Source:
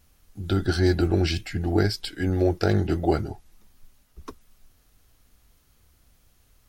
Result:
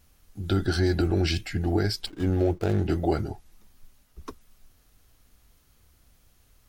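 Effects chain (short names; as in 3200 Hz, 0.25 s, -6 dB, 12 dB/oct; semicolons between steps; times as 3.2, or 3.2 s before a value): 2.06–2.87 median filter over 25 samples; limiter -14 dBFS, peak gain reduction 5.5 dB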